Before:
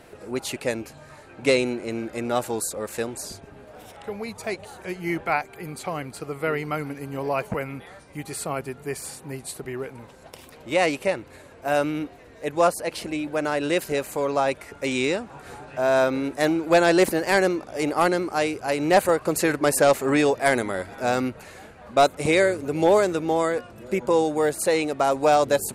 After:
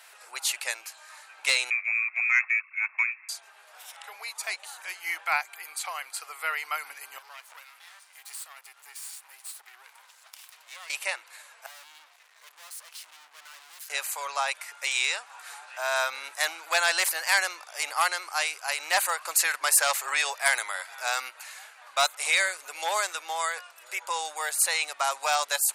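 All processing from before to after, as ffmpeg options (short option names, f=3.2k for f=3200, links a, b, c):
-filter_complex "[0:a]asettb=1/sr,asplit=3[a][b][c];[a]atrim=end=1.704[d];[b]atrim=start=1.7:end=3.29,asetpts=PTS-STARTPTS,afade=t=in:d=0.004:c=qsin,afade=t=out:st=1.586:d=0.004:c=qsin,lowpass=f=2.3k:t=q:w=0.5098,lowpass=f=2.3k:t=q:w=0.6013,lowpass=f=2.3k:t=q:w=0.9,lowpass=f=2.3k:t=q:w=2.563,afreqshift=-2700,agate=range=-9dB:threshold=-34dB:ratio=16:release=100:detection=peak[e];[c]atrim=start=3.286[f];[d][e]acrossfade=d=0.004:c1=hsin:c2=qsin[g];[g][f]acrossfade=d=0.004:c1=qsin:c2=hsin,asettb=1/sr,asplit=3[h][i][j];[h]atrim=end=7.184[k];[i]atrim=start=7.18:end=10.9,asetpts=PTS-STARTPTS,afade=t=in:d=0.004:c=qsin,afade=t=out:st=3.716:d=0.004:c=qsin,lowshelf=f=250:g=-11,acompressor=threshold=-39dB:ratio=2.5:attack=3.2:release=140:knee=1:detection=peak,aeval=exprs='max(val(0),0)':c=same[l];[j]atrim=start=10.896[m];[k][l]acrossfade=d=0.004:c1=hsin:c2=qsin[n];[n][m]acrossfade=d=0.004:c1=qsin:c2=hsin,asettb=1/sr,asplit=3[o][p][q];[o]atrim=end=11.664[r];[p]atrim=start=11.66:end=13.9,asetpts=PTS-STARTPTS,afade=t=in:d=0.004:c=qsin,afade=t=out:st=2.236:d=0.004:c=qsin,asubboost=boost=8:cutoff=230,aeval=exprs='(tanh(63.1*val(0)+0.2)-tanh(0.2))/63.1':c=same,aeval=exprs='max(val(0),0)':c=same[s];[q]atrim=start=13.896[t];[r][s]acrossfade=d=0.004:c1=hsin:c2=qsin[u];[u][t]acrossfade=d=0.004:c1=qsin:c2=hsin,highpass=f=890:w=0.5412,highpass=f=890:w=1.3066,highshelf=f=2.5k:g=8.5,acontrast=50,volume=-7.5dB"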